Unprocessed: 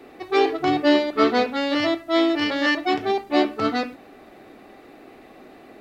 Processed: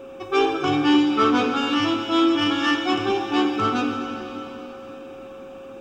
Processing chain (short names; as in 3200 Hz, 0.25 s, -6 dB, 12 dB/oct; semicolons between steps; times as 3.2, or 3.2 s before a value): fixed phaser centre 2900 Hz, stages 8; plate-style reverb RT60 3.7 s, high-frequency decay 0.95×, DRR 4 dB; whine 540 Hz -42 dBFS; in parallel at -7 dB: soft clip -24 dBFS, distortion -10 dB; on the sum: gain +1.5 dB